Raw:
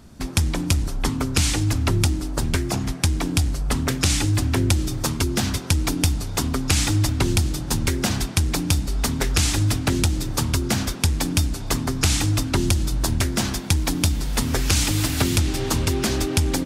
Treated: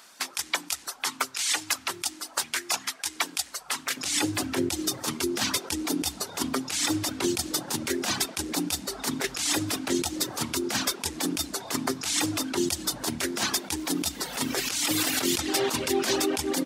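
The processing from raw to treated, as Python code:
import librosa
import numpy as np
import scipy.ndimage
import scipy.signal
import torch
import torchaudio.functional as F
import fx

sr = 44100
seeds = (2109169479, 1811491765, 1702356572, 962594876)

y = fx.dereverb_blind(x, sr, rt60_s=0.77)
y = fx.highpass(y, sr, hz=fx.steps((0.0, 1100.0), (3.97, 390.0)), slope=12)
y = fx.over_compress(y, sr, threshold_db=-30.0, ratio=-1.0)
y = y * librosa.db_to_amplitude(3.5)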